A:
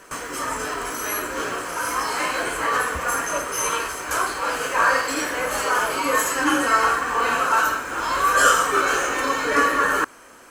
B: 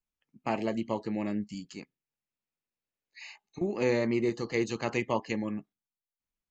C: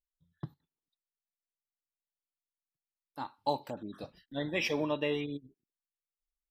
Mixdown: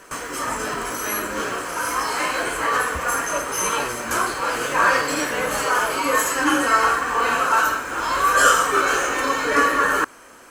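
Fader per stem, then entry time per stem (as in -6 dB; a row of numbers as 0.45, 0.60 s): +1.0, -7.5, -0.5 dB; 0.00, 0.00, 0.30 s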